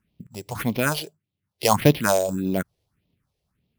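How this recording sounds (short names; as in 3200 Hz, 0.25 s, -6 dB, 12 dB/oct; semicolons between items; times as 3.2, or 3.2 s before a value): aliases and images of a low sample rate 7600 Hz, jitter 0%; phasing stages 4, 1.7 Hz, lowest notch 210–1500 Hz; random-step tremolo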